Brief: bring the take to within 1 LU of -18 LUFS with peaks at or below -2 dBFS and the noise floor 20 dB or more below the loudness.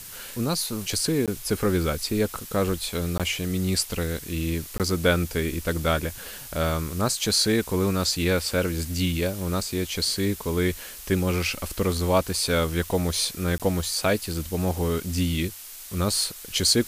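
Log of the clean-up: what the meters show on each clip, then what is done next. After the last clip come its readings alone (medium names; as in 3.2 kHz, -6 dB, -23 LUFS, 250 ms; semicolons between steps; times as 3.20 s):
dropouts 4; longest dropout 17 ms; noise floor -41 dBFS; noise floor target -46 dBFS; loudness -25.5 LUFS; peak level -7.5 dBFS; loudness target -18.0 LUFS
-> interpolate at 1.26/3.18/4.78/13.58 s, 17 ms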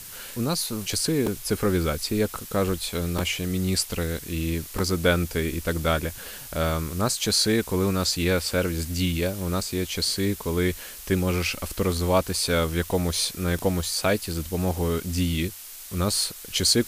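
dropouts 0; noise floor -41 dBFS; noise floor target -46 dBFS
-> noise print and reduce 6 dB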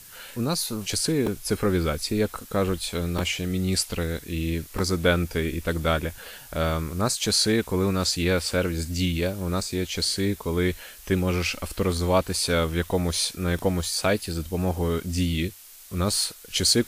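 noise floor -46 dBFS; loudness -25.5 LUFS; peak level -7.5 dBFS; loudness target -18.0 LUFS
-> trim +7.5 dB; peak limiter -2 dBFS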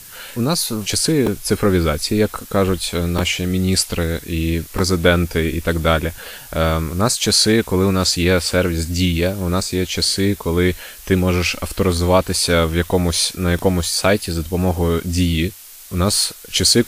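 loudness -18.0 LUFS; peak level -2.0 dBFS; noise floor -38 dBFS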